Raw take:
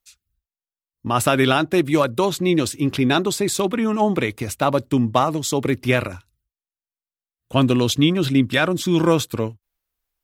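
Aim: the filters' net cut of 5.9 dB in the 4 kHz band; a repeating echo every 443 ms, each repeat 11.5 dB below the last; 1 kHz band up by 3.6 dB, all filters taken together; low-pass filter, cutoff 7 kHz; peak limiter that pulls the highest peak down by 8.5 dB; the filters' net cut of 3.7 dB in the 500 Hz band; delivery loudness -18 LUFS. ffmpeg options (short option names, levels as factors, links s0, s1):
-af "lowpass=7000,equalizer=f=500:t=o:g=-7,equalizer=f=1000:t=o:g=7,equalizer=f=4000:t=o:g=-7.5,alimiter=limit=0.299:level=0:latency=1,aecho=1:1:443|886|1329:0.266|0.0718|0.0194,volume=1.68"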